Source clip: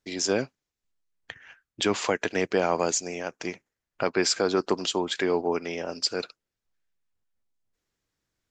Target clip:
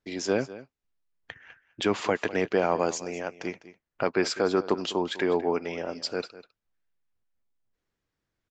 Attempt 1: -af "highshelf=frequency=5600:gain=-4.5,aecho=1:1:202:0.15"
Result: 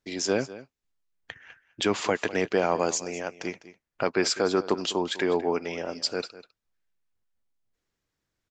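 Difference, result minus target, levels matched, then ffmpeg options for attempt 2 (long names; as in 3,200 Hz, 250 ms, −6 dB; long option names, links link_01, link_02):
8,000 Hz band +5.5 dB
-af "highshelf=frequency=5600:gain=-15,aecho=1:1:202:0.15"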